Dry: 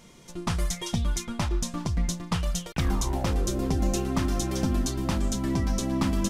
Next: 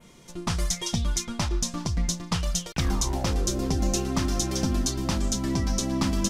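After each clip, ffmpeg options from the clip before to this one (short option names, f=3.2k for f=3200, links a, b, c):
-af "adynamicequalizer=threshold=0.00355:dfrequency=5500:dqfactor=1.1:tfrequency=5500:tqfactor=1.1:attack=5:release=100:ratio=0.375:range=3.5:mode=boostabove:tftype=bell"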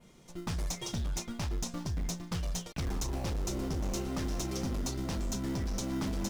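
-filter_complex "[0:a]asplit=2[a][b];[b]acrusher=samples=26:mix=1:aa=0.000001,volume=-5.5dB[c];[a][c]amix=inputs=2:normalize=0,asoftclip=type=hard:threshold=-21dB,volume=-9dB"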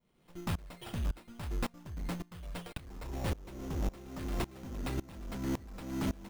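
-af "acrusher=samples=7:mix=1:aa=0.000001,aeval=exprs='val(0)*pow(10,-23*if(lt(mod(-1.8*n/s,1),2*abs(-1.8)/1000),1-mod(-1.8*n/s,1)/(2*abs(-1.8)/1000),(mod(-1.8*n/s,1)-2*abs(-1.8)/1000)/(1-2*abs(-1.8)/1000))/20)':c=same,volume=3.5dB"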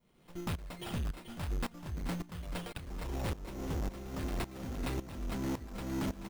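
-filter_complex "[0:a]asoftclip=type=tanh:threshold=-35.5dB,asplit=2[a][b];[b]aecho=0:1:433:0.299[c];[a][c]amix=inputs=2:normalize=0,volume=4dB"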